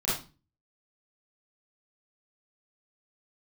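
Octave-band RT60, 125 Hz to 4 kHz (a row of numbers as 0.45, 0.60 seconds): 0.55, 0.50, 0.30, 0.30, 0.30, 0.30 seconds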